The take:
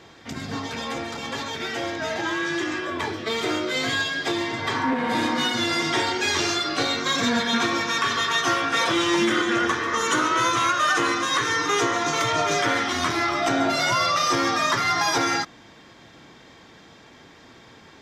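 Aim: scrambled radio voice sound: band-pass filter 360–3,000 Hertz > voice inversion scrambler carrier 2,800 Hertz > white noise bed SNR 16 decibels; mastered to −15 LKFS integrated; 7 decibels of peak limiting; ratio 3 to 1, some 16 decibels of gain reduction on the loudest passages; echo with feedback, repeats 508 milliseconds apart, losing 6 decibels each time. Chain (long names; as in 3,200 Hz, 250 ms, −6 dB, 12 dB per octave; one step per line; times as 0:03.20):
downward compressor 3 to 1, threshold −41 dBFS
brickwall limiter −33.5 dBFS
band-pass filter 360–3,000 Hz
repeating echo 508 ms, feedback 50%, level −6 dB
voice inversion scrambler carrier 2,800 Hz
white noise bed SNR 16 dB
level +26.5 dB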